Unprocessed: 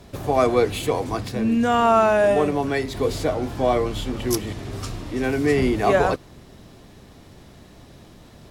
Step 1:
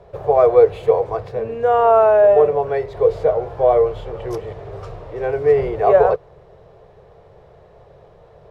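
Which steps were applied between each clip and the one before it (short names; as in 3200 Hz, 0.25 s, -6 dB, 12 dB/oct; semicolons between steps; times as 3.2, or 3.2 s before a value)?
EQ curve 160 Hz 0 dB, 260 Hz -21 dB, 450 Hz +13 dB, 10000 Hz -21 dB; gain -3 dB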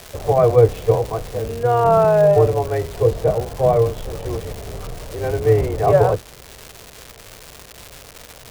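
octaver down 2 oct, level +4 dB; crackle 430/s -23 dBFS; gain -2 dB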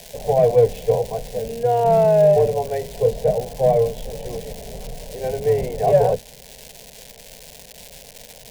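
in parallel at -6 dB: hard clip -10.5 dBFS, distortion -14 dB; on the sum: fixed phaser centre 330 Hz, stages 6; gain -3 dB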